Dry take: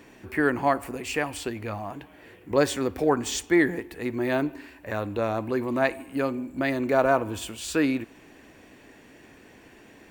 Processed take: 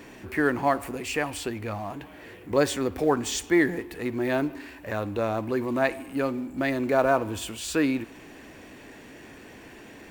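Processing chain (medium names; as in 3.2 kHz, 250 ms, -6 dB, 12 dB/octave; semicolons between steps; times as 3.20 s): companding laws mixed up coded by mu; trim -1 dB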